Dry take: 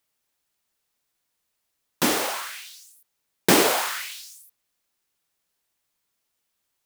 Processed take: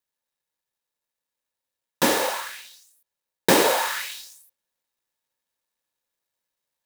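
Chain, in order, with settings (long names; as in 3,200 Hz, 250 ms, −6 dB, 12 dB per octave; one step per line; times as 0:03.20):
mu-law and A-law mismatch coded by A
speech leveller 0.5 s
hollow resonant body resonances 530/910/1,700/3,800 Hz, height 9 dB, ringing for 35 ms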